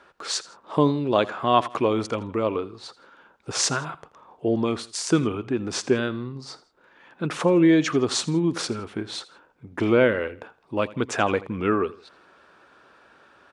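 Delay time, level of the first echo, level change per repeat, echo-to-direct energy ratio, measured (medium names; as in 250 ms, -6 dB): 82 ms, -19.0 dB, -8.0 dB, -18.5 dB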